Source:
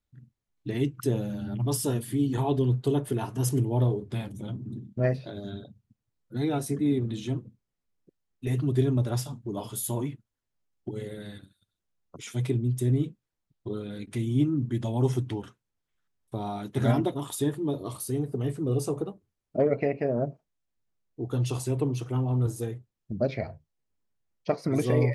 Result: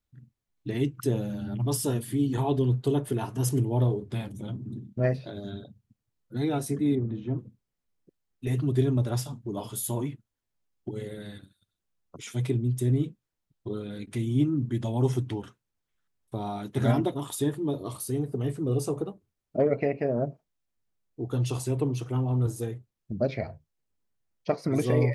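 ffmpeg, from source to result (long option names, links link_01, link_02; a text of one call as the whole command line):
ffmpeg -i in.wav -filter_complex "[0:a]asettb=1/sr,asplit=3[link_01][link_02][link_03];[link_01]atrim=end=6.954[link_04];[link_02]atrim=start=6.95:end=7.39,asetpts=PTS-STARTPTS,afade=type=in:duration=0.004:curve=qsin,afade=type=out:start_time=0.436:duration=0.004:curve=qsin,lowpass=1300[link_05];[link_03]atrim=start=7.386[link_06];[link_04][link_05]acrossfade=duration=0.004:curve1=hsin:curve2=qsin[link_07];[link_07][link_06]acrossfade=duration=0.004:curve1=qsin:curve2=hsin" out.wav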